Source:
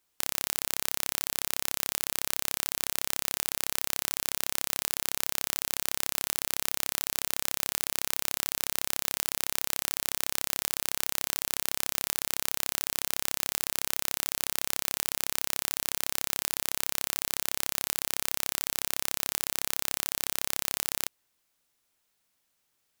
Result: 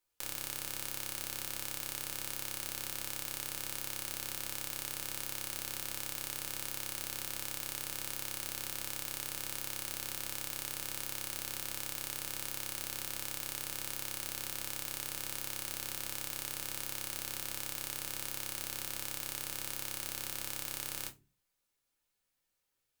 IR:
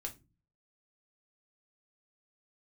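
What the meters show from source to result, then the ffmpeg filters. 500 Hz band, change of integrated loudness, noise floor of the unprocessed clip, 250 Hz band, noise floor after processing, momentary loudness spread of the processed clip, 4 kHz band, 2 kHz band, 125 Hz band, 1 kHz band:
-7.0 dB, -8.0 dB, -76 dBFS, -5.5 dB, -83 dBFS, 0 LU, -8.0 dB, -7.5 dB, -2.0 dB, -8.0 dB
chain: -filter_complex "[1:a]atrim=start_sample=2205,asetrate=48510,aresample=44100[s0];[0:a][s0]afir=irnorm=-1:irlink=0,volume=0.596"

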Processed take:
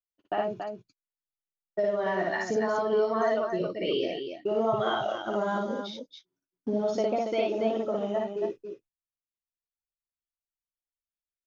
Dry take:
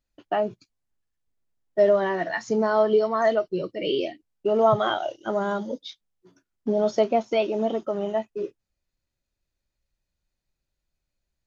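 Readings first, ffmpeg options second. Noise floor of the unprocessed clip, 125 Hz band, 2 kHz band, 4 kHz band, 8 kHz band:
-83 dBFS, -4.0 dB, -2.5 dB, -2.5 dB, no reading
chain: -af "agate=range=0.0447:threshold=0.00562:ratio=16:detection=peak,acompressor=threshold=0.0891:ratio=6,aecho=1:1:58.31|279.9:0.891|0.501,volume=0.631"

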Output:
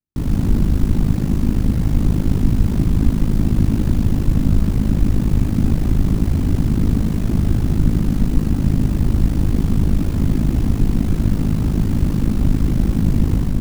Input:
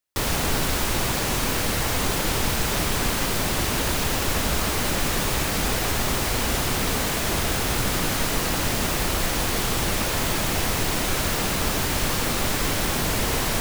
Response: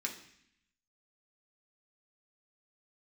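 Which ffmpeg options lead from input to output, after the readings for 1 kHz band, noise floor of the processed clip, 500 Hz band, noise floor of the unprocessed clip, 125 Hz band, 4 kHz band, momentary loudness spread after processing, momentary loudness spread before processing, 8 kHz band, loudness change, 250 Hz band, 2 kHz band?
-10.5 dB, -21 dBFS, -3.5 dB, -25 dBFS, +12.5 dB, -15.5 dB, 1 LU, 0 LU, -16.0 dB, +4.5 dB, +10.5 dB, -14.0 dB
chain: -af "aeval=exprs='val(0)*sin(2*PI*26*n/s)':c=same,tiltshelf=f=690:g=9,dynaudnorm=f=110:g=5:m=1.41,lowshelf=f=350:t=q:w=1.5:g=9.5,volume=0.473"

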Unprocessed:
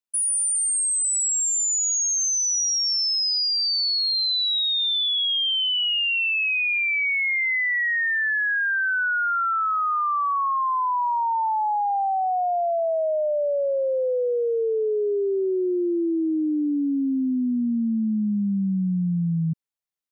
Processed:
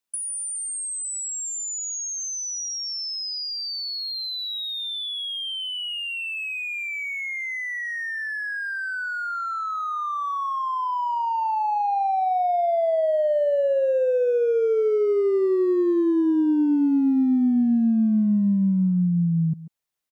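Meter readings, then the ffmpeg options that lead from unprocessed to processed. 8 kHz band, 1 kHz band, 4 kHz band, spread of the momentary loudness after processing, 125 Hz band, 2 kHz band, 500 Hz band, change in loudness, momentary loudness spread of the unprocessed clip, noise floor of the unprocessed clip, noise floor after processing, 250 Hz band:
-7.0 dB, -1.5 dB, -7.5 dB, 7 LU, no reading, -6.5 dB, +2.5 dB, -2.0 dB, 4 LU, -23 dBFS, -30 dBFS, +3.5 dB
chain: -filter_complex "[0:a]asplit=2[s0][s1];[s1]adelay=140,highpass=300,lowpass=3400,asoftclip=type=hard:threshold=0.0335,volume=0.355[s2];[s0][s2]amix=inputs=2:normalize=0,acrossover=split=220|660[s3][s4][s5];[s3]acompressor=threshold=0.0251:ratio=4[s6];[s4]acompressor=threshold=0.0355:ratio=4[s7];[s5]acompressor=threshold=0.0112:ratio=4[s8];[s6][s7][s8]amix=inputs=3:normalize=0,volume=2.11"

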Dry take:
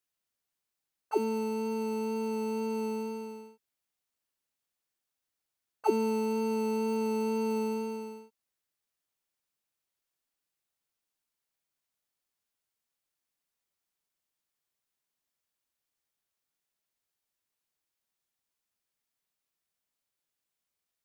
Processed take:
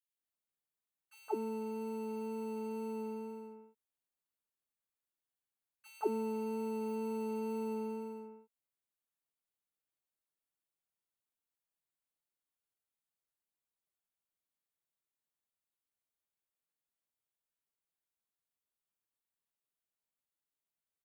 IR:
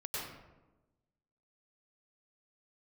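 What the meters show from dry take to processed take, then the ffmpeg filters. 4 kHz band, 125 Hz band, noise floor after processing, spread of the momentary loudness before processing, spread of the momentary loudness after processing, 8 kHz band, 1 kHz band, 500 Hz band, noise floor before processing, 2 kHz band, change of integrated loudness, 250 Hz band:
-13.0 dB, no reading, under -85 dBFS, 11 LU, 12 LU, -11.0 dB, -8.0 dB, -7.5 dB, under -85 dBFS, -10.0 dB, -7.5 dB, -7.5 dB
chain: -filter_complex "[0:a]equalizer=f=5400:w=3.3:g=-14.5,acrossover=split=2200[s0][s1];[s0]adelay=170[s2];[s2][s1]amix=inputs=2:normalize=0,volume=0.422"

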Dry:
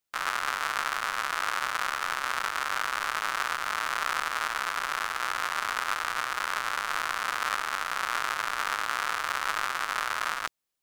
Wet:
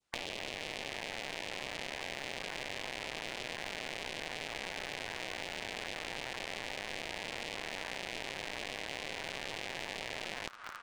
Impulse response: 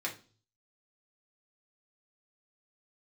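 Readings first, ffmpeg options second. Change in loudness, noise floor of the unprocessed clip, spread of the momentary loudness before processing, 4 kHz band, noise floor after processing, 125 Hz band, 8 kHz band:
-10.5 dB, -37 dBFS, 1 LU, -5.0 dB, -45 dBFS, no reading, -10.0 dB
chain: -filter_complex "[0:a]asplit=2[s0][s1];[s1]aecho=0:1:215|430|645|860|1075:0.0944|0.0557|0.0329|0.0194|0.0114[s2];[s0][s2]amix=inputs=2:normalize=0,adynamicequalizer=threshold=0.00891:dfrequency=1700:dqfactor=0.73:tfrequency=1700:tqfactor=0.73:attack=5:release=100:ratio=0.375:range=2.5:mode=cutabove:tftype=bell,aresample=22050,aresample=44100,afftfilt=real='re*lt(hypot(re,im),0.0355)':imag='im*lt(hypot(re,im),0.0355)':win_size=1024:overlap=0.75,aemphasis=mode=reproduction:type=50kf,asplit=2[s3][s4];[s4]acrusher=bits=4:dc=4:mix=0:aa=0.000001,volume=0.562[s5];[s3][s5]amix=inputs=2:normalize=0,acrossover=split=1600|4000[s6][s7][s8];[s6]acompressor=threshold=0.00282:ratio=4[s9];[s7]acompressor=threshold=0.00316:ratio=4[s10];[s8]acompressor=threshold=0.00112:ratio=4[s11];[s9][s10][s11]amix=inputs=3:normalize=0,volume=2.66"

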